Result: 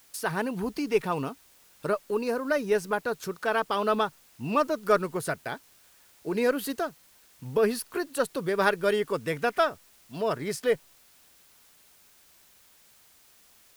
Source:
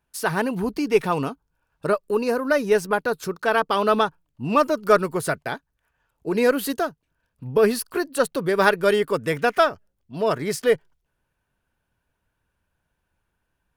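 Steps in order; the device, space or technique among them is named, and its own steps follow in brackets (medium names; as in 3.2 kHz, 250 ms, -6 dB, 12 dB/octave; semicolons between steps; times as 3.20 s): noise-reduction cassette on a plain deck (tape noise reduction on one side only encoder only; wow and flutter 16 cents; white noise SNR 29 dB); trim -6 dB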